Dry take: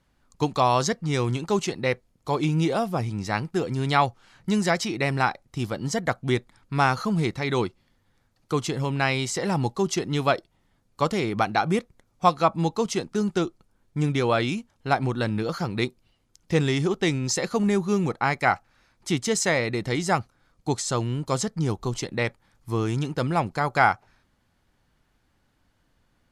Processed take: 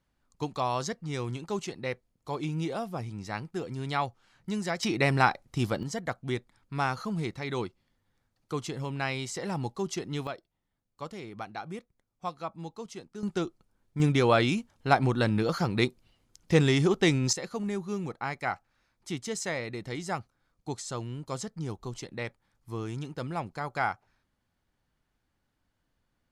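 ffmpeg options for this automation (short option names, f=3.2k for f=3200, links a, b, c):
-af "asetnsamples=n=441:p=0,asendcmd='4.83 volume volume 0dB;5.83 volume volume -8dB;10.27 volume volume -16dB;13.23 volume volume -6dB;14 volume volume 0dB;17.33 volume volume -10dB',volume=-9dB"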